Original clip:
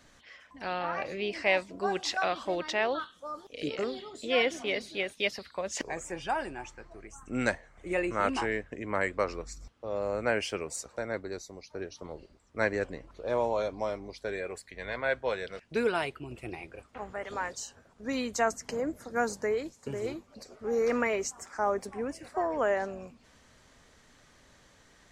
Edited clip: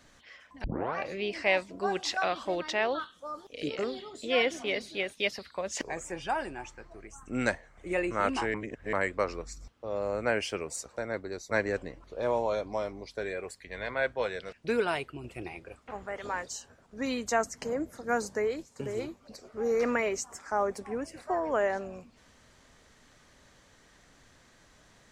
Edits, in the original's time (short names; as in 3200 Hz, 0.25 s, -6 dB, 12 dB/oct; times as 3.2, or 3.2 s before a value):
0.64 tape start 0.31 s
8.54–8.93 reverse
11.51–12.58 cut